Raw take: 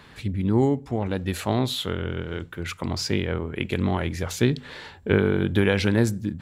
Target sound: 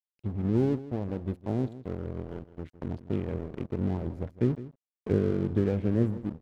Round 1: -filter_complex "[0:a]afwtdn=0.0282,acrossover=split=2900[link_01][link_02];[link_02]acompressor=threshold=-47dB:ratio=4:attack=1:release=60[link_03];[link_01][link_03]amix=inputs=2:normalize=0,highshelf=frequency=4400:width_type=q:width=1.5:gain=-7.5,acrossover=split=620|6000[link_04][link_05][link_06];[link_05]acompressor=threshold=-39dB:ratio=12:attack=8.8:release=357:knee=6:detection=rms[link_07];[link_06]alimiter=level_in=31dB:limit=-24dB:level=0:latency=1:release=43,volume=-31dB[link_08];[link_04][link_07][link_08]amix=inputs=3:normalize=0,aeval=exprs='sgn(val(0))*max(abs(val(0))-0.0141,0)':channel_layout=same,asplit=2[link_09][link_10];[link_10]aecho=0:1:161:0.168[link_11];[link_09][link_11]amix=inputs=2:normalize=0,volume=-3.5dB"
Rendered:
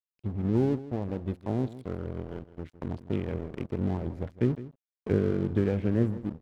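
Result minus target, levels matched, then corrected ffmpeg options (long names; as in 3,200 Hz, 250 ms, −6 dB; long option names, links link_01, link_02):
downward compressor: peak gain reduction −6 dB
-filter_complex "[0:a]afwtdn=0.0282,acrossover=split=2900[link_01][link_02];[link_02]acompressor=threshold=-47dB:ratio=4:attack=1:release=60[link_03];[link_01][link_03]amix=inputs=2:normalize=0,highshelf=frequency=4400:width_type=q:width=1.5:gain=-7.5,acrossover=split=620|6000[link_04][link_05][link_06];[link_05]acompressor=threshold=-45.5dB:ratio=12:attack=8.8:release=357:knee=6:detection=rms[link_07];[link_06]alimiter=level_in=31dB:limit=-24dB:level=0:latency=1:release=43,volume=-31dB[link_08];[link_04][link_07][link_08]amix=inputs=3:normalize=0,aeval=exprs='sgn(val(0))*max(abs(val(0))-0.0141,0)':channel_layout=same,asplit=2[link_09][link_10];[link_10]aecho=0:1:161:0.168[link_11];[link_09][link_11]amix=inputs=2:normalize=0,volume=-3.5dB"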